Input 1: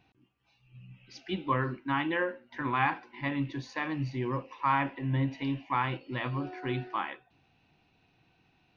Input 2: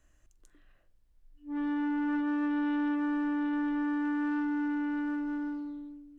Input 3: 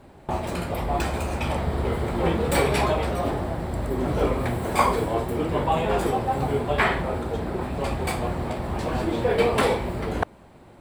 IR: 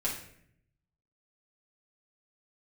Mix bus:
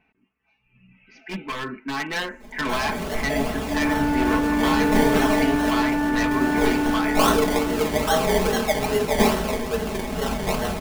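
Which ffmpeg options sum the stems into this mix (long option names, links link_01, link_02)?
-filter_complex "[0:a]highshelf=frequency=2900:width_type=q:width=3:gain=-8,alimiter=limit=-21.5dB:level=0:latency=1:release=390,aeval=exprs='0.0355*(abs(mod(val(0)/0.0355+3,4)-2)-1)':channel_layout=same,volume=-0.5dB,asplit=2[link_01][link_02];[1:a]adelay=2200,volume=0dB[link_03];[2:a]highshelf=frequency=3300:gain=10.5,acrusher=samples=26:mix=1:aa=0.000001:lfo=1:lforange=15.6:lforate=2.4,adelay=2400,volume=-13dB,asplit=2[link_04][link_05];[link_05]volume=-5.5dB[link_06];[link_02]apad=whole_len=582374[link_07];[link_04][link_07]sidechaincompress=threshold=-53dB:ratio=8:attack=16:release=116[link_08];[3:a]atrim=start_sample=2205[link_09];[link_06][link_09]afir=irnorm=-1:irlink=0[link_10];[link_01][link_03][link_08][link_10]amix=inputs=4:normalize=0,equalizer=frequency=120:width=3.3:gain=-6.5,aecho=1:1:4.6:0.65,dynaudnorm=framelen=250:gausssize=13:maxgain=9dB"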